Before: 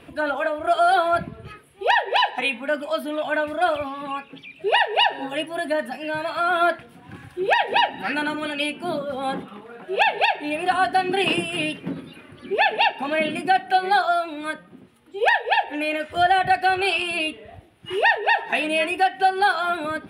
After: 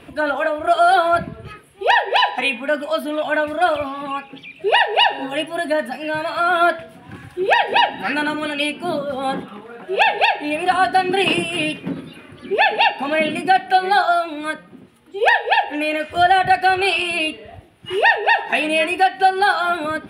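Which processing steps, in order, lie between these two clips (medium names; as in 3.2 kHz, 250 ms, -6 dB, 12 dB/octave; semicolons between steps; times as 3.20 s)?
de-hum 164.1 Hz, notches 30; trim +4 dB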